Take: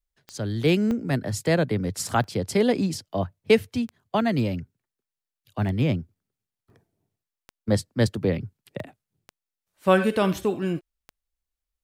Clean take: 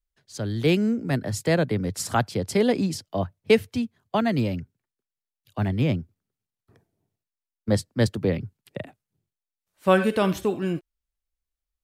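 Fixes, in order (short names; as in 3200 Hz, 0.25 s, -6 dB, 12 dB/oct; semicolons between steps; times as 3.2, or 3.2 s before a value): de-click; interpolate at 0.91/2.24/2.94/6.7/8.8, 1.4 ms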